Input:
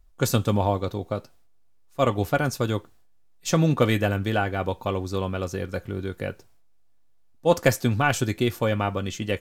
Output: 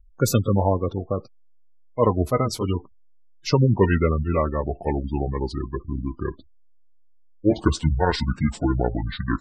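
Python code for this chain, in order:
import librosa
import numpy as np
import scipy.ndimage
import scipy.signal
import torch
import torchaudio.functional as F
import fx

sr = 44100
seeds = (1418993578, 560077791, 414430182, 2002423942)

y = fx.pitch_glide(x, sr, semitones=-9.5, runs='starting unshifted')
y = fx.spec_gate(y, sr, threshold_db=-20, keep='strong')
y = y * librosa.db_to_amplitude(3.5)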